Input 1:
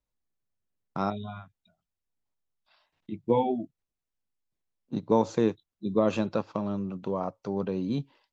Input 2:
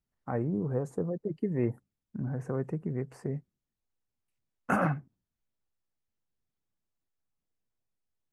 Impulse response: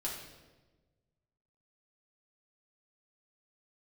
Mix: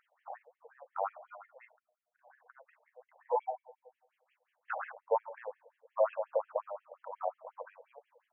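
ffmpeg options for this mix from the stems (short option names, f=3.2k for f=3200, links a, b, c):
-filter_complex "[0:a]lowpass=1.4k,dynaudnorm=f=170:g=5:m=5.5dB,volume=-5dB,asplit=2[a][b];[b]volume=-14dB[c];[1:a]acompressor=mode=upward:threshold=-34dB:ratio=2.5,volume=-5.5dB[d];[2:a]atrim=start_sample=2205[e];[c][e]afir=irnorm=-1:irlink=0[f];[a][d][f]amix=inputs=3:normalize=0,acrossover=split=170[g][h];[g]acompressor=threshold=-31dB:ratio=1.5[i];[i][h]amix=inputs=2:normalize=0,afftfilt=real='re*between(b*sr/1024,640*pow(2400/640,0.5+0.5*sin(2*PI*5.6*pts/sr))/1.41,640*pow(2400/640,0.5+0.5*sin(2*PI*5.6*pts/sr))*1.41)':imag='im*between(b*sr/1024,640*pow(2400/640,0.5+0.5*sin(2*PI*5.6*pts/sr))/1.41,640*pow(2400/640,0.5+0.5*sin(2*PI*5.6*pts/sr))*1.41)':win_size=1024:overlap=0.75"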